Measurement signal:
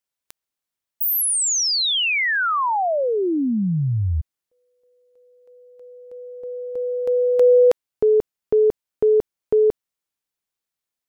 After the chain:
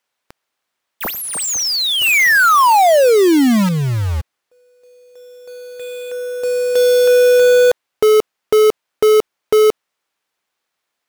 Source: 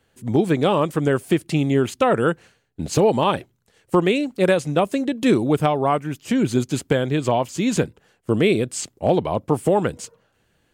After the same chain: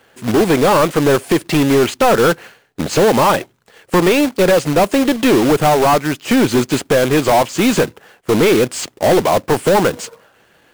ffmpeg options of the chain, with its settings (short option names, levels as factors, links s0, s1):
-filter_complex "[0:a]asplit=2[s0][s1];[s1]highpass=f=720:p=1,volume=12.6,asoftclip=type=tanh:threshold=0.473[s2];[s0][s2]amix=inputs=2:normalize=0,lowpass=f=1800:p=1,volume=0.501,acrusher=bits=2:mode=log:mix=0:aa=0.000001,volume=1.33"